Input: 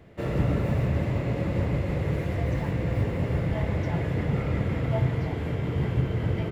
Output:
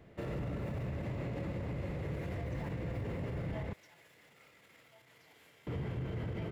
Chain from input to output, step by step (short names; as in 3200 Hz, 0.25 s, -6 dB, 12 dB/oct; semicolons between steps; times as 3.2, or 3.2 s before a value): bell 84 Hz -2 dB; limiter -25.5 dBFS, peak gain reduction 11.5 dB; 3.73–5.67 differentiator; gain -5.5 dB